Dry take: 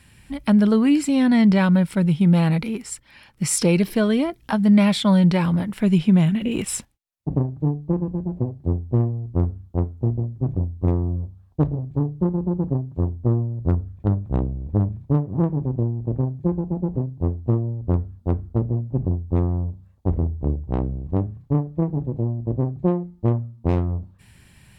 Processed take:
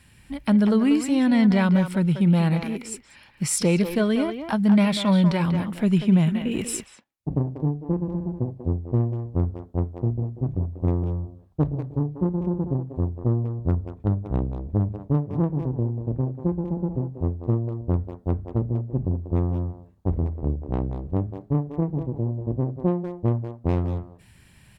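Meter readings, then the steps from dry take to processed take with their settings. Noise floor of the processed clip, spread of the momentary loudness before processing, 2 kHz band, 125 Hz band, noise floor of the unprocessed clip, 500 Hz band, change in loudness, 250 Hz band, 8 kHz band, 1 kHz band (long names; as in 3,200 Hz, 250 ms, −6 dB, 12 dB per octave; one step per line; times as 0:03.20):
−54 dBFS, 10 LU, −2.0 dB, −2.5 dB, −54 dBFS, −2.0 dB, −2.5 dB, −2.5 dB, −2.5 dB, −2.0 dB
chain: far-end echo of a speakerphone 190 ms, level −7 dB
level −2.5 dB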